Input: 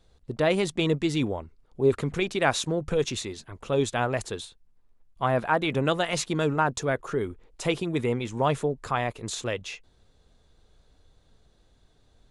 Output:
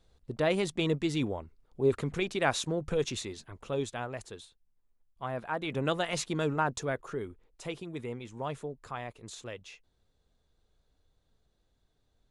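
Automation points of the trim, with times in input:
3.50 s -4.5 dB
4.07 s -11.5 dB
5.44 s -11.5 dB
5.89 s -5 dB
6.73 s -5 dB
7.69 s -12 dB

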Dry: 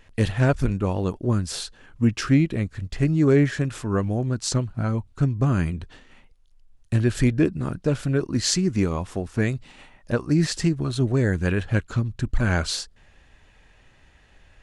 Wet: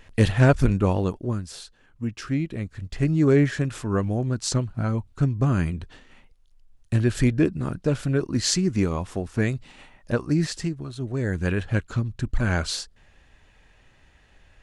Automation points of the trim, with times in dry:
0.92 s +3 dB
1.53 s -9 dB
2.16 s -9 dB
3.13 s -0.5 dB
10.24 s -0.5 dB
10.96 s -10 dB
11.42 s -1.5 dB

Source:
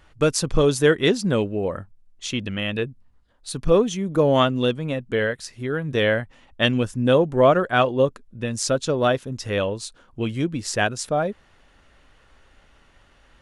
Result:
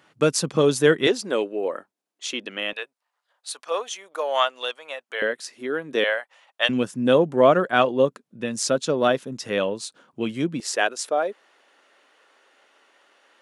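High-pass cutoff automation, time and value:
high-pass 24 dB/octave
150 Hz
from 1.07 s 310 Hz
from 2.73 s 650 Hz
from 5.22 s 260 Hz
from 6.04 s 590 Hz
from 6.69 s 160 Hz
from 10.60 s 340 Hz

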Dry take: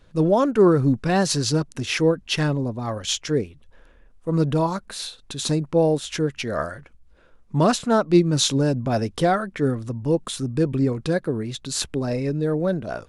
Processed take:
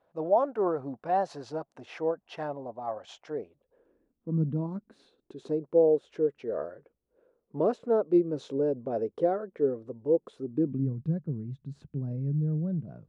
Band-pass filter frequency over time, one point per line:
band-pass filter, Q 3.2
3.37 s 720 Hz
4.43 s 190 Hz
5.57 s 450 Hz
10.40 s 450 Hz
10.89 s 150 Hz

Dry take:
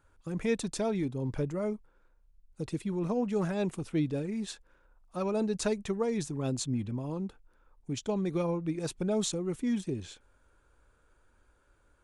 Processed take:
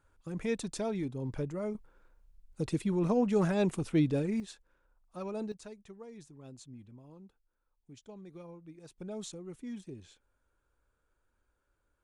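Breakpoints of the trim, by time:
-3.5 dB
from 1.75 s +2.5 dB
from 4.40 s -7.5 dB
from 5.52 s -18 dB
from 8.98 s -11.5 dB

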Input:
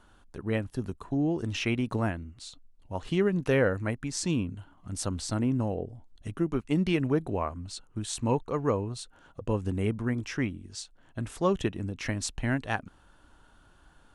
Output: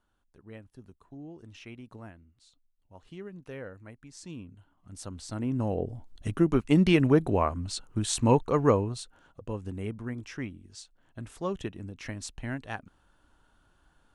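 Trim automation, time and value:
3.88 s -17 dB
5.27 s -7.5 dB
5.89 s +5 dB
8.70 s +5 dB
9.42 s -6.5 dB

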